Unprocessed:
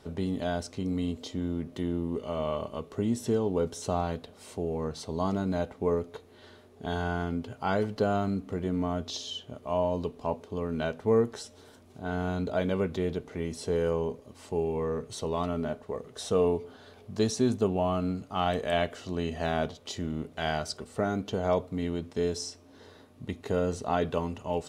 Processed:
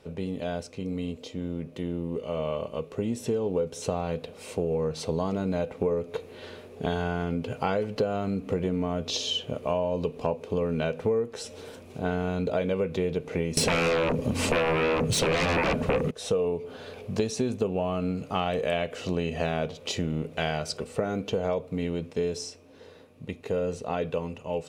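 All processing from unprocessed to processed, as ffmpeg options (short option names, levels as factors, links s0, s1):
-filter_complex "[0:a]asettb=1/sr,asplit=3[s0][s1][s2];[s0]atrim=end=13.574[s3];[s1]atrim=start=13.57:end=16.11,asetpts=PTS-STARTPTS,afade=t=in:d=0.004:c=qsin,afade=t=out:st=2.536:d=0.004:c=qsin,lowshelf=f=320:t=q:w=1.5:g=7,aeval=exprs='0.2*sin(PI/2*8.91*val(0)/0.2)':c=same[s4];[s2]atrim=start=16.106[s5];[s3][s4]acrossfade=d=0.004:c1=hsin:c2=qsin[s6];[s6][s5]acrossfade=d=0.004:c1=qsin:c2=hsin,dynaudnorm=f=690:g=13:m=4.47,equalizer=f=160:t=o:w=0.33:g=6,equalizer=f=500:t=o:w=0.33:g=11,equalizer=f=2500:t=o:w=0.33:g=10,acompressor=threshold=0.1:ratio=8,volume=0.668"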